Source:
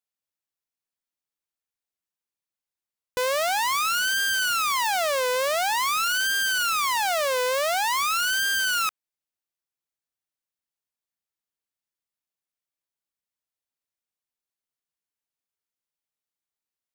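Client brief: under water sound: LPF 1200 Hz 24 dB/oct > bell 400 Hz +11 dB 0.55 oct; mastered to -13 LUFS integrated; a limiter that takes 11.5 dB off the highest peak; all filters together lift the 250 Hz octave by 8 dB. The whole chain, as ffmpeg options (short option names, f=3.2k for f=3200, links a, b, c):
-af "equalizer=f=250:t=o:g=6,alimiter=level_in=3.5dB:limit=-24dB:level=0:latency=1,volume=-3.5dB,lowpass=f=1.2k:w=0.5412,lowpass=f=1.2k:w=1.3066,equalizer=f=400:t=o:w=0.55:g=11,volume=23dB"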